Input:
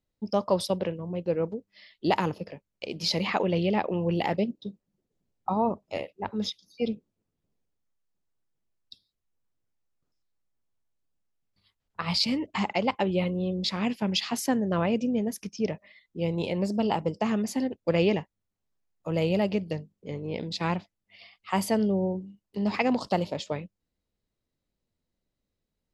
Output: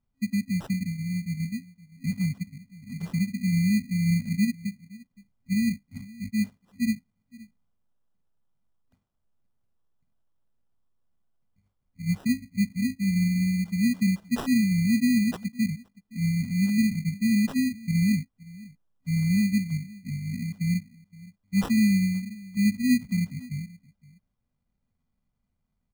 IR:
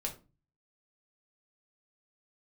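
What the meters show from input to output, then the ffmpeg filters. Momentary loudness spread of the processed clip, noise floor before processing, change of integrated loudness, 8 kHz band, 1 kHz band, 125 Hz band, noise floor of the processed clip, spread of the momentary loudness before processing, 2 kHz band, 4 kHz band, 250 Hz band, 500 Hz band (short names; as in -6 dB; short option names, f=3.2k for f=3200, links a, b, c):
14 LU, -84 dBFS, +2.0 dB, +2.5 dB, under -15 dB, +6.0 dB, -78 dBFS, 11 LU, +1.0 dB, -7.5 dB, +5.0 dB, under -20 dB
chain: -filter_complex "[0:a]asplit=2[a][b];[b]adelay=519,volume=-21dB,highshelf=f=4k:g=-11.7[c];[a][c]amix=inputs=2:normalize=0,afftfilt=real='re*(1-between(b*sr/4096,260,9800))':imag='im*(1-between(b*sr/4096,260,9800))':win_size=4096:overlap=0.75,acrusher=samples=20:mix=1:aa=0.000001,volume=6dB"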